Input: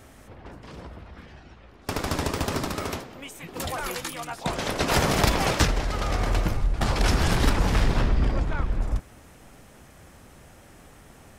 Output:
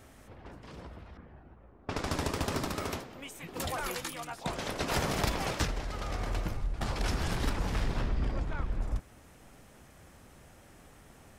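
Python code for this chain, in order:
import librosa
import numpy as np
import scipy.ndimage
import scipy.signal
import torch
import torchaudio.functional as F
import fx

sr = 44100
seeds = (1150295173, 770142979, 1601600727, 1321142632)

y = fx.env_lowpass(x, sr, base_hz=900.0, full_db=-23.0, at=(1.17, 2.56))
y = fx.rider(y, sr, range_db=5, speed_s=2.0)
y = y * librosa.db_to_amplitude(-8.5)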